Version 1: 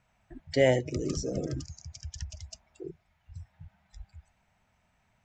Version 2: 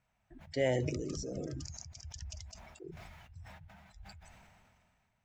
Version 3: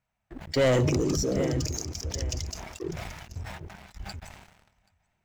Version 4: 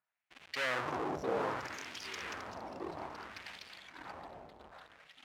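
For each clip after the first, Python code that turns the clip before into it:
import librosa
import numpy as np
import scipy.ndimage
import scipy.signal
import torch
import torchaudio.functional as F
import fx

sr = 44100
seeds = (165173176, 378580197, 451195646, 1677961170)

y1 = fx.sustainer(x, sr, db_per_s=27.0)
y1 = y1 * librosa.db_to_amplitude(-8.5)
y2 = fx.echo_feedback(y1, sr, ms=781, feedback_pct=26, wet_db=-16.0)
y2 = fx.leveller(y2, sr, passes=3)
y2 = y2 * librosa.db_to_amplitude(2.5)
y3 = fx.halfwave_hold(y2, sr)
y3 = fx.echo_pitch(y3, sr, ms=604, semitones=-3, count=3, db_per_echo=-6.0)
y3 = fx.filter_lfo_bandpass(y3, sr, shape='sine', hz=0.62, low_hz=680.0, high_hz=2600.0, q=1.6)
y3 = y3 * librosa.db_to_amplitude(-5.0)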